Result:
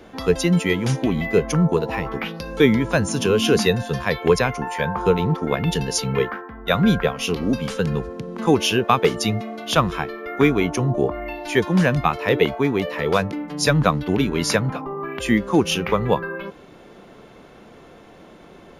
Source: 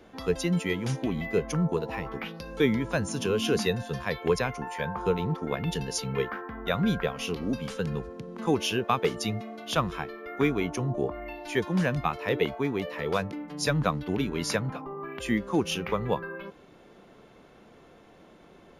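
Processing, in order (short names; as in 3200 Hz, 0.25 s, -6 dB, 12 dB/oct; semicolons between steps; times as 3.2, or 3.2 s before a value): 6.19–7.28 three-band expander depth 70%; gain +8.5 dB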